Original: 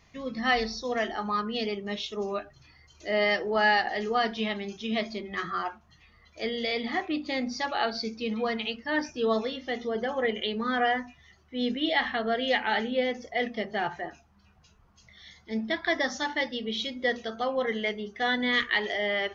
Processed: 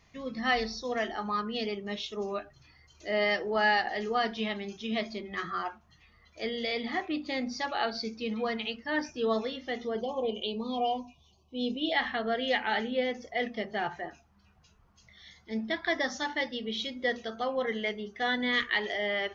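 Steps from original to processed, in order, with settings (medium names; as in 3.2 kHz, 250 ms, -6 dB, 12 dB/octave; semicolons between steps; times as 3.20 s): 10.01–11.92 s: Chebyshev band-stop 1.1–2.5 kHz, order 4; trim -2.5 dB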